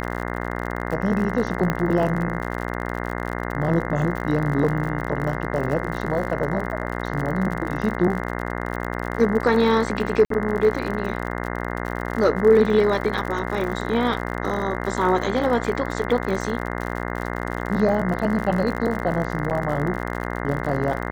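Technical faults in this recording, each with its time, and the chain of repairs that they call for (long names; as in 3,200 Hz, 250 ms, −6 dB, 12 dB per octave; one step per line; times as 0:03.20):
mains buzz 60 Hz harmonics 35 −28 dBFS
surface crackle 58 per second −28 dBFS
0:01.70: click −9 dBFS
0:10.25–0:10.30: drop-out 53 ms
0:19.50–0:19.51: drop-out 8.6 ms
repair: click removal
hum removal 60 Hz, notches 35
repair the gap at 0:10.25, 53 ms
repair the gap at 0:19.50, 8.6 ms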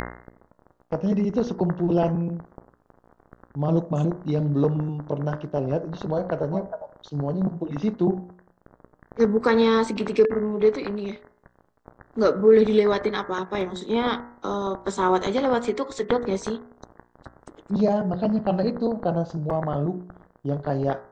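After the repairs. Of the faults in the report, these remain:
none of them is left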